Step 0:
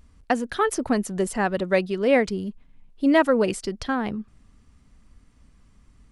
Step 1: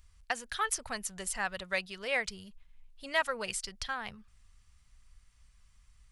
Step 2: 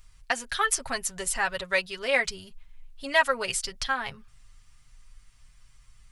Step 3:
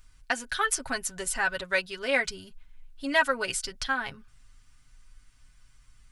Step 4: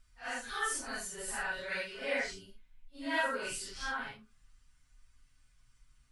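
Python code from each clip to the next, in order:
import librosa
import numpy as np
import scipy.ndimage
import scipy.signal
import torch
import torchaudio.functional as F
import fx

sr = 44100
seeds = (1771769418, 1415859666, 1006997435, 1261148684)

y1 = fx.tone_stack(x, sr, knobs='10-0-10')
y2 = y1 + 0.67 * np.pad(y1, (int(7.4 * sr / 1000.0), 0))[:len(y1)]
y2 = y2 * 10.0 ** (5.5 / 20.0)
y3 = fx.small_body(y2, sr, hz=(290.0, 1500.0), ring_ms=45, db=10)
y3 = y3 * 10.0 ** (-2.0 / 20.0)
y4 = fx.phase_scramble(y3, sr, seeds[0], window_ms=200)
y4 = y4 * 10.0 ** (-8.0 / 20.0)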